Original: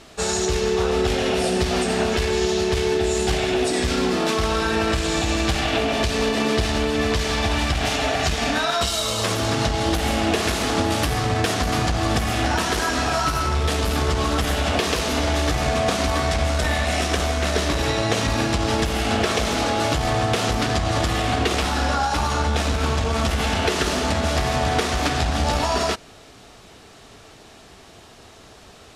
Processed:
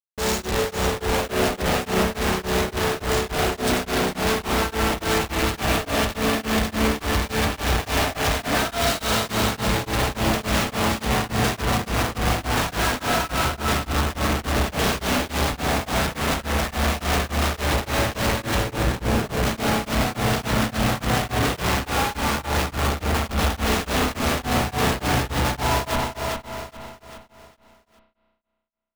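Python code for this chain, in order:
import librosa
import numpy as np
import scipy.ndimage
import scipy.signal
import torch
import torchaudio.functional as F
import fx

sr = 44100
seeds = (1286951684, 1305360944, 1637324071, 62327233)

y = fx.median_filter(x, sr, points=25, at=(18.6, 19.43))
y = fx.peak_eq(y, sr, hz=360.0, db=-5.5, octaves=0.34)
y = fx.schmitt(y, sr, flips_db=-29.5)
y = fx.echo_feedback(y, sr, ms=407, feedback_pct=43, wet_db=-5.5)
y = fx.rev_spring(y, sr, rt60_s=1.8, pass_ms=(32,), chirp_ms=20, drr_db=4.0)
y = y * np.abs(np.cos(np.pi * 3.5 * np.arange(len(y)) / sr))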